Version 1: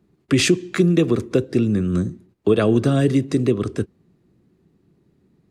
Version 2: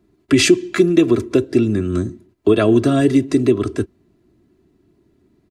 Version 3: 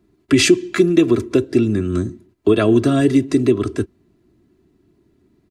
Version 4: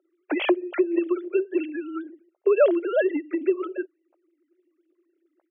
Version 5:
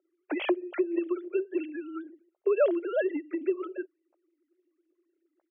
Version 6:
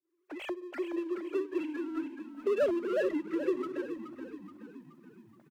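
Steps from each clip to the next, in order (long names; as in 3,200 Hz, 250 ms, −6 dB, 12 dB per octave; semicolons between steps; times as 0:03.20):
comb filter 3 ms, depth 59%; level +2 dB
parametric band 610 Hz −2 dB
three sine waves on the formant tracks; downward compressor 3 to 1, threshold −15 dBFS, peak gain reduction 10.5 dB; high-pass with resonance 590 Hz, resonance Q 3.9
high-frequency loss of the air 79 metres; level −5.5 dB
fade in at the beginning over 1.55 s; power curve on the samples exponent 0.7; echo with shifted repeats 425 ms, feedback 52%, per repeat −36 Hz, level −9 dB; level −6 dB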